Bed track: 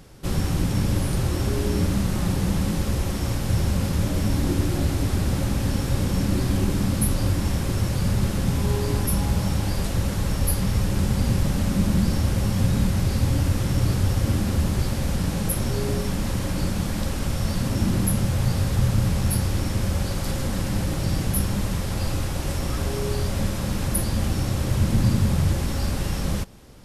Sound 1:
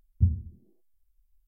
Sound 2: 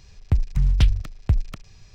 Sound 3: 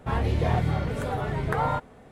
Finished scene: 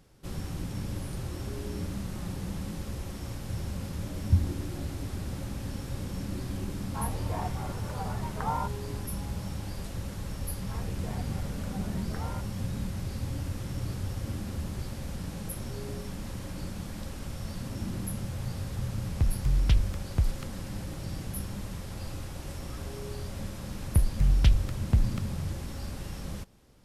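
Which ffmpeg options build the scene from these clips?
-filter_complex "[3:a]asplit=2[a][b];[2:a]asplit=2[c][d];[0:a]volume=-12.5dB[e];[a]equalizer=f=940:w=1.5:g=12[f];[1:a]atrim=end=1.47,asetpts=PTS-STARTPTS,volume=-0.5dB,afade=t=in:d=0.004:c=hsin,afade=t=out:st=1.466:d=0.004:c=hsin,adelay=4100[g];[f]atrim=end=2.11,asetpts=PTS-STARTPTS,volume=-14.5dB,afade=t=in:d=0.004:c=hsin,afade=t=out:st=2.106:d=0.004:c=hsin,adelay=6880[h];[b]atrim=end=2.11,asetpts=PTS-STARTPTS,volume=-15.5dB,afade=t=in:d=0.004:c=hsin,afade=t=out:st=2.106:d=0.004:c=hsin,adelay=10620[i];[c]atrim=end=1.94,asetpts=PTS-STARTPTS,volume=-6dB,afade=t=in:d=0.004:c=hsin,afade=t=out:st=1.936:d=0.004:c=hsin,adelay=18890[j];[d]atrim=end=1.94,asetpts=PTS-STARTPTS,volume=-4dB,afade=t=in:d=0.004:c=hsin,afade=t=out:st=1.936:d=0.004:c=hsin,adelay=23640[k];[e][g][h][i][j][k]amix=inputs=6:normalize=0"

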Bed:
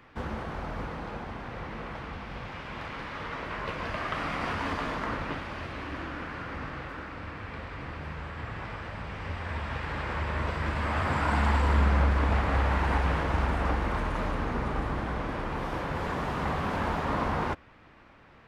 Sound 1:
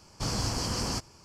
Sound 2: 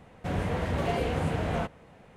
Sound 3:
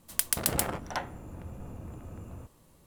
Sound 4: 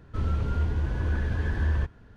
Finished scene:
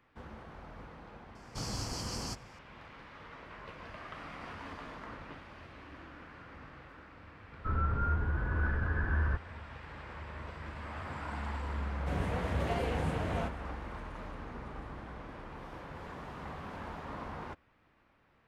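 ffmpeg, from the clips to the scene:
-filter_complex "[0:a]volume=-13.5dB[a];[4:a]lowpass=f=1.4k:t=q:w=4.2[b];[1:a]atrim=end=1.24,asetpts=PTS-STARTPTS,volume=-7.5dB,afade=t=in:d=0.004:c=hsin,afade=t=out:st=1.236:d=0.004:c=hsin,adelay=1350[c];[b]atrim=end=2.16,asetpts=PTS-STARTPTS,volume=-5.5dB,afade=t=in:d=0.004:c=hsin,afade=t=out:st=2.156:d=0.004:c=hsin,adelay=7510[d];[2:a]atrim=end=2.16,asetpts=PTS-STARTPTS,volume=-5.5dB,afade=t=in:d=0.004:c=hsin,afade=t=out:st=2.156:d=0.004:c=hsin,adelay=11820[e];[a][c][d][e]amix=inputs=4:normalize=0"

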